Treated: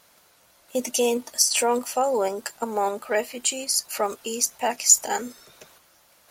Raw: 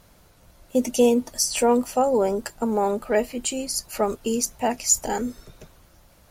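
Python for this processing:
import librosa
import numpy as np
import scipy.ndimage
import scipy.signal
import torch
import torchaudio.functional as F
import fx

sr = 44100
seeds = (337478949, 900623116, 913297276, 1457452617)

p1 = fx.highpass(x, sr, hz=1000.0, slope=6)
p2 = fx.level_steps(p1, sr, step_db=10)
p3 = p1 + F.gain(torch.from_numpy(p2), 2.0).numpy()
y = F.gain(torch.from_numpy(p3), -1.0).numpy()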